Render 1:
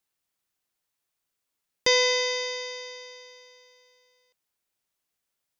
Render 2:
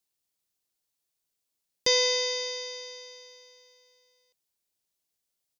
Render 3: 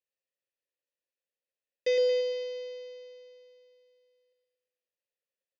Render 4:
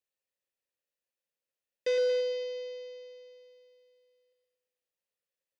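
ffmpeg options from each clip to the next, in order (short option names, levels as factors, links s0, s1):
-af "firequalizer=gain_entry='entry(460,0);entry(1300,-6);entry(4300,3)':delay=0.05:min_phase=1,volume=0.75"
-filter_complex "[0:a]acontrast=73,asplit=3[s0][s1][s2];[s0]bandpass=f=530:t=q:w=8,volume=1[s3];[s1]bandpass=f=1840:t=q:w=8,volume=0.501[s4];[s2]bandpass=f=2480:t=q:w=8,volume=0.355[s5];[s3][s4][s5]amix=inputs=3:normalize=0,aecho=1:1:114|228|342|456|570|684:0.562|0.276|0.135|0.0662|0.0324|0.0159,volume=0.794"
-af "asoftclip=type=tanh:threshold=0.0841"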